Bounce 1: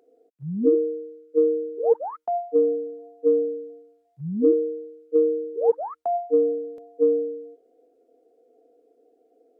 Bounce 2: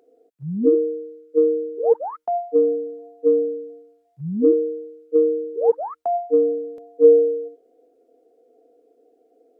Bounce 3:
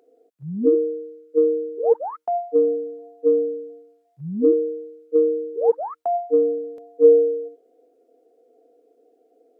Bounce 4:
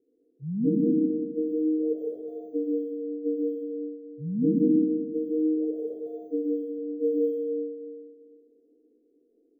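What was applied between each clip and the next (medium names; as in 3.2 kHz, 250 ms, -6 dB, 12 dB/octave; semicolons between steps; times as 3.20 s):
time-frequency box 7.04–7.48 s, 330–780 Hz +7 dB; trim +2.5 dB
bass shelf 150 Hz -6.5 dB
bit-reversed sample order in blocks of 16 samples; inverse Chebyshev low-pass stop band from 870 Hz, stop band 50 dB; algorithmic reverb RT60 1.8 s, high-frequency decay 0.9×, pre-delay 65 ms, DRR -3.5 dB; trim -1.5 dB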